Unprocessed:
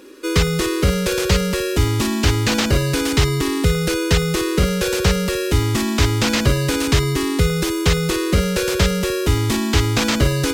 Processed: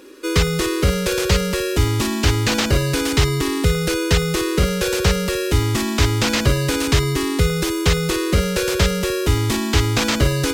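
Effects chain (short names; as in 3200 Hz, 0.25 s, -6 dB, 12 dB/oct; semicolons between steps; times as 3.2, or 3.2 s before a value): bell 210 Hz -2.5 dB 0.77 oct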